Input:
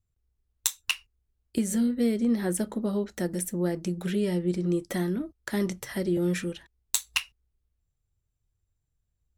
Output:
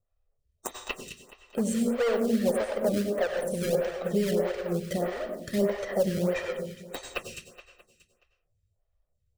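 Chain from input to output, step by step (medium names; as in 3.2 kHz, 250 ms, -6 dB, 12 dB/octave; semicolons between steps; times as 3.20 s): coarse spectral quantiser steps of 15 dB; low-pass 8.3 kHz 12 dB/octave; peaking EQ 580 Hz +12 dB 0.93 oct; hum notches 60/120/180/240 Hz; comb 1.6 ms, depth 88%; hard clipper -17.5 dBFS, distortion -13 dB; in parallel at -5.5 dB: decimation with a swept rate 33×, swing 100% 2.8 Hz; on the sum: feedback delay 211 ms, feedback 49%, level -11.5 dB; plate-style reverb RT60 0.52 s, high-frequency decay 0.8×, pre-delay 80 ms, DRR 5.5 dB; lamp-driven phase shifter 1.6 Hz; trim -3 dB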